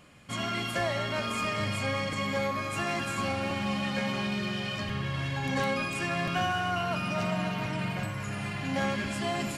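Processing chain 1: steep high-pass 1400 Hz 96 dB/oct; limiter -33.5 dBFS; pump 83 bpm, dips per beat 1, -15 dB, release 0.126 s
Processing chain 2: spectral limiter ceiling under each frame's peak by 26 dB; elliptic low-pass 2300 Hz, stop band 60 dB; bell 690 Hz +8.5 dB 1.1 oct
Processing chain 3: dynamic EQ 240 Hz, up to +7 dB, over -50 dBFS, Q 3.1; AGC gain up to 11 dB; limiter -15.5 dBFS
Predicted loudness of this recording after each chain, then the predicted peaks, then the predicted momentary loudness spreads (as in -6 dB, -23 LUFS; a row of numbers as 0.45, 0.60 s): -40.0, -30.5, -23.5 LUFS; -33.5, -15.5, -15.5 dBFS; 1, 5, 1 LU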